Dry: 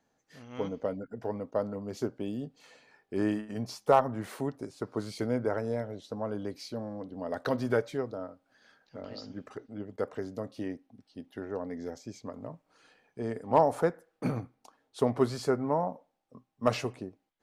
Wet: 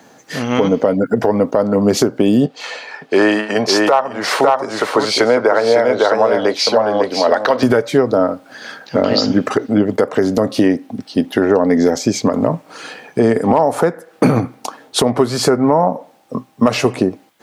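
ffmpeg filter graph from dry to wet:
ffmpeg -i in.wav -filter_complex "[0:a]asettb=1/sr,asplit=3[link_01][link_02][link_03];[link_01]atrim=end=2.464[link_04];[link_02]atrim=start=2.46:end=7.63,asetpts=PTS-STARTPTS,afade=type=in:duration=0.004:curve=qsin,afade=type=out:start_time=5.166:duration=0.004:curve=qsin,acrossover=split=450 6300:gain=0.126 1 0.2[link_05][link_06][link_07];[link_05][link_06][link_07]amix=inputs=3:normalize=0,aecho=1:1:552:0.501,atrim=end_sample=227997[link_08];[link_03]atrim=start=7.626[link_09];[link_04][link_08]acrossfade=duration=0.004:curve1=hsin:curve2=qsin[link_10];[link_10][link_09]acrossfade=duration=0.004:curve1=qsin:curve2=hsin,highpass=140,acompressor=threshold=-38dB:ratio=8,alimiter=level_in=31dB:limit=-1dB:release=50:level=0:latency=1,volume=-1dB" out.wav

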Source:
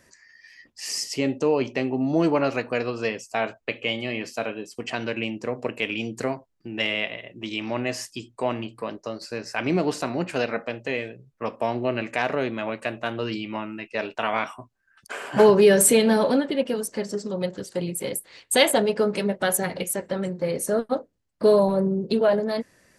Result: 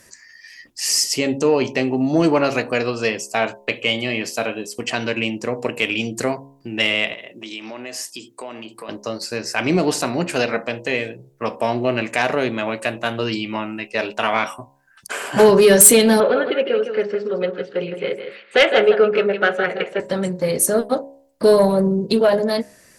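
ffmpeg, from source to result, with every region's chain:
ffmpeg -i in.wav -filter_complex "[0:a]asettb=1/sr,asplit=3[link_01][link_02][link_03];[link_01]atrim=end=7.134[link_04];[link_02]atrim=start=7.13:end=8.89,asetpts=PTS-STARTPTS,afade=type=in:duration=0.004:curve=qsin,afade=type=out:start_time=1.756:duration=0.004:curve=qsin,highpass=240,acompressor=threshold=-38dB:ratio=3:attack=3.2:release=140:knee=1:detection=peak[link_05];[link_03]atrim=start=8.886[link_06];[link_04][link_05]acrossfade=duration=0.004:curve1=hsin:curve2=qsin[link_07];[link_07][link_06]acrossfade=duration=0.004:curve1=qsin:curve2=hsin,asettb=1/sr,asplit=3[link_08][link_09][link_10];[link_08]atrim=end=16.204[link_11];[link_09]atrim=start=16.2:end=20,asetpts=PTS-STARTPTS,afade=type=in:duration=0.004:curve=qsin,afade=type=out:start_time=3.796:duration=0.004:curve=qsin,highpass=260,equalizer=frequency=270:width_type=q:width=4:gain=-10,equalizer=frequency=420:width_type=q:width=4:gain=7,equalizer=frequency=940:width_type=q:width=4:gain=-8,equalizer=frequency=1400:width_type=q:width=4:gain=8,equalizer=frequency=2600:width_type=q:width=4:gain=3,lowpass=frequency=2900:width=0.5412,lowpass=frequency=2900:width=1.3066,aecho=1:1:160:0.376,atrim=end_sample=167580[link_12];[link_10]atrim=start=19.996[link_13];[link_11][link_12]acrossfade=duration=0.004:curve1=hsin:curve2=qsin[link_14];[link_14][link_13]acrossfade=duration=0.004:curve1=qsin:curve2=hsin,aemphasis=mode=production:type=cd,bandreject=frequency=68.75:width_type=h:width=4,bandreject=frequency=137.5:width_type=h:width=4,bandreject=frequency=206.25:width_type=h:width=4,bandreject=frequency=275:width_type=h:width=4,bandreject=frequency=343.75:width_type=h:width=4,bandreject=frequency=412.5:width_type=h:width=4,bandreject=frequency=481.25:width_type=h:width=4,bandreject=frequency=550:width_type=h:width=4,bandreject=frequency=618.75:width_type=h:width=4,bandreject=frequency=687.5:width_type=h:width=4,bandreject=frequency=756.25:width_type=h:width=4,bandreject=frequency=825:width_type=h:width=4,bandreject=frequency=893.75:width_type=h:width=4,bandreject=frequency=962.5:width_type=h:width=4,bandreject=frequency=1031.25:width_type=h:width=4,acontrast=81,volume=-1dB" out.wav

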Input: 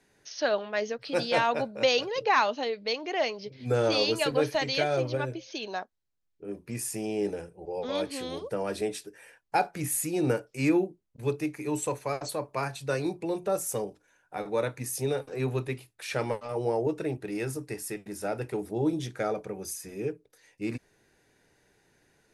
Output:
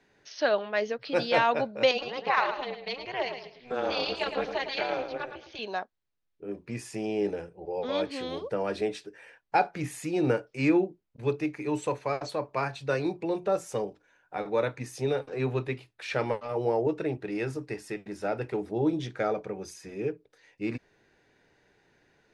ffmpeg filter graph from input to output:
ffmpeg -i in.wav -filter_complex "[0:a]asettb=1/sr,asplit=3[link_01][link_02][link_03];[link_01]atrim=end=1.914[link_04];[link_02]atrim=start=1.91:end=5.59,asetpts=PTS-STARTPTS,afade=type=in:duration=0.004:curve=qsin,afade=type=out:start_time=3.676:duration=0.004:curve=qsin,highpass=490,lowpass=5700,aecho=1:1:109|218|327:0.376|0.101|0.0274,atrim=end_sample=162288,tremolo=f=250:d=0.857[link_05];[link_03]atrim=start=5.586[link_06];[link_04][link_05]acrossfade=duration=0.004:curve1=hsin:curve2=qsin[link_07];[link_07][link_06]acrossfade=duration=0.004:curve1=qsin:curve2=hsin,lowpass=4200,lowshelf=frequency=220:gain=-3.5,volume=2dB" out.wav

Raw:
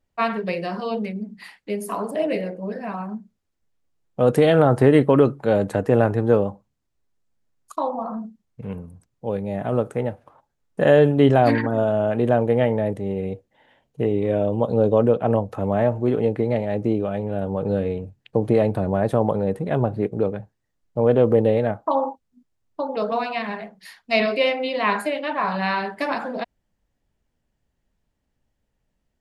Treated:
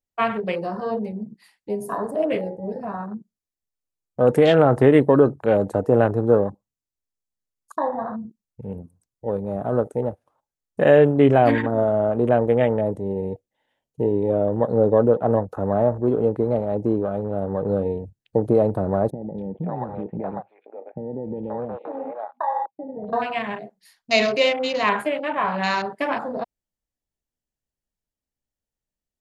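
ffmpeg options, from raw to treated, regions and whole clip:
ffmpeg -i in.wav -filter_complex "[0:a]asettb=1/sr,asplit=3[link_01][link_02][link_03];[link_01]atrim=end=19.104[link_04];[link_02]atrim=start=19.1:end=23.13,asetpts=PTS-STARTPTS,afade=type=in:duration=0.004:curve=qsin,afade=type=out:start_time=4.026:duration=0.004:curve=qsin,acompressor=threshold=-23dB:ratio=5:attack=3.2:release=140:knee=1:detection=peak,highpass=140,equalizer=frequency=170:width_type=q:width=4:gain=8,equalizer=frequency=430:width_type=q:width=4:gain=-4,equalizer=frequency=820:width_type=q:width=4:gain=9,equalizer=frequency=2300:width_type=q:width=4:gain=9,lowpass=frequency=3200:width=0.5412,lowpass=frequency=3200:width=1.3066,acrossover=split=520|2500[link_05][link_06][link_07];[link_07]adelay=280[link_08];[link_06]adelay=530[link_09];[link_05][link_09][link_08]amix=inputs=3:normalize=0,atrim=end_sample=177723[link_10];[link_03]atrim=start=23.126[link_11];[link_04][link_10]acrossfade=duration=0.004:curve1=hsin:curve2=qsin[link_12];[link_12][link_11]acrossfade=duration=0.004:curve1=qsin:curve2=hsin,bass=frequency=250:gain=-9,treble=frequency=4000:gain=11,afwtdn=0.0251,lowshelf=frequency=240:gain=8.5" out.wav

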